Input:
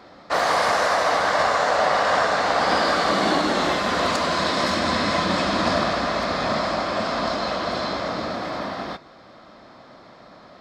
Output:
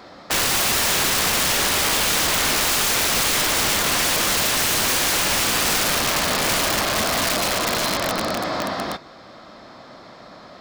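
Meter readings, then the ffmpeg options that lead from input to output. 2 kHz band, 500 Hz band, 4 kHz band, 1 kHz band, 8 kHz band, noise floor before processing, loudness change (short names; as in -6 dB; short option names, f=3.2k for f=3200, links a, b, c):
+2.0 dB, -4.0 dB, +7.0 dB, -4.0 dB, +17.0 dB, -47 dBFS, +3.0 dB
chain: -af "highshelf=f=4.7k:g=6.5,aeval=exprs='(mod(8.41*val(0)+1,2)-1)/8.41':c=same,volume=3.5dB"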